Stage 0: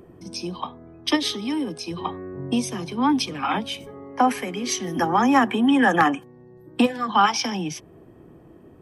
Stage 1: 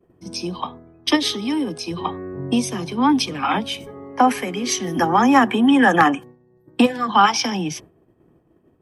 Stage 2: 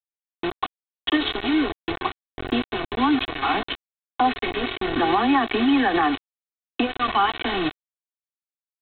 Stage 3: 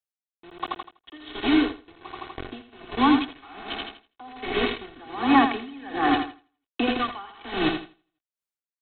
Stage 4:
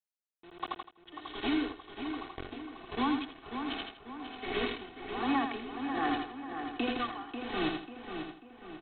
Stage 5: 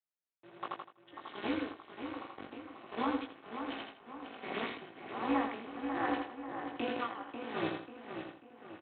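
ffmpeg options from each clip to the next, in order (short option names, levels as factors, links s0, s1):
-af "agate=range=0.0224:threshold=0.0126:ratio=3:detection=peak,volume=1.5"
-af "aresample=8000,acrusher=bits=3:mix=0:aa=0.000001,aresample=44100,alimiter=limit=0.316:level=0:latency=1:release=78,aecho=1:1:2.7:0.67,volume=0.708"
-filter_complex "[0:a]asplit=2[s0][s1];[s1]aecho=0:1:82|164|246|328|410|492:0.501|0.246|0.12|0.059|0.0289|0.0142[s2];[s0][s2]amix=inputs=2:normalize=0,aeval=exprs='val(0)*pow(10,-26*(0.5-0.5*cos(2*PI*1.3*n/s))/20)':c=same,volume=1.19"
-filter_complex "[0:a]acompressor=threshold=0.0794:ratio=2.5,asplit=2[s0][s1];[s1]adelay=541,lowpass=f=3500:p=1,volume=0.422,asplit=2[s2][s3];[s3]adelay=541,lowpass=f=3500:p=1,volume=0.46,asplit=2[s4][s5];[s5]adelay=541,lowpass=f=3500:p=1,volume=0.46,asplit=2[s6][s7];[s7]adelay=541,lowpass=f=3500:p=1,volume=0.46,asplit=2[s8][s9];[s9]adelay=541,lowpass=f=3500:p=1,volume=0.46[s10];[s0][s2][s4][s6][s8][s10]amix=inputs=6:normalize=0,volume=0.473"
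-filter_complex "[0:a]tremolo=f=220:d=0.857,highpass=170,lowpass=2700,asplit=2[s0][s1];[s1]adelay=18,volume=0.631[s2];[s0][s2]amix=inputs=2:normalize=0"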